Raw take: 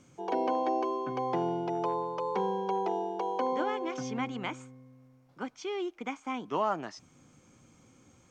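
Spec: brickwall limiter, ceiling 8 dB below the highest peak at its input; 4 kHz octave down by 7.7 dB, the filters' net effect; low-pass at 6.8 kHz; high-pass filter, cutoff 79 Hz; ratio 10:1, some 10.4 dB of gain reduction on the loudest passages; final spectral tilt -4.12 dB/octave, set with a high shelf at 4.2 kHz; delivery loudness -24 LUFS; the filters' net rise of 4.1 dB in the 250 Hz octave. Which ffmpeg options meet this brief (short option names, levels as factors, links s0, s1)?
-af "highpass=79,lowpass=6800,equalizer=f=250:t=o:g=5.5,equalizer=f=4000:t=o:g=-7.5,highshelf=f=4200:g=-6.5,acompressor=threshold=0.0178:ratio=10,volume=8.41,alimiter=limit=0.178:level=0:latency=1"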